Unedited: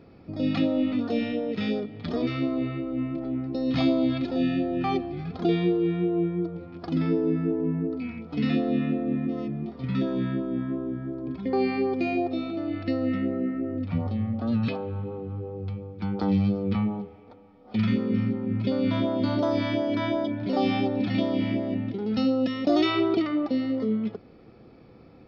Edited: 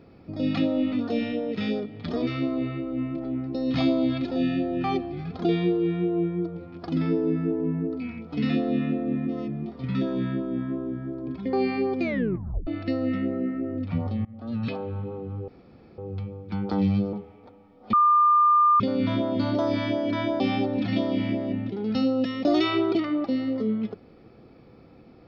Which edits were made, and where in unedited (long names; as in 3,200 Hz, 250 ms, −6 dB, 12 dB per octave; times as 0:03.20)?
0:12.02: tape stop 0.65 s
0:14.25–0:14.81: fade in, from −23 dB
0:15.48: splice in room tone 0.50 s
0:16.63–0:16.97: remove
0:17.77–0:18.64: beep over 1,200 Hz −15 dBFS
0:20.24–0:20.62: remove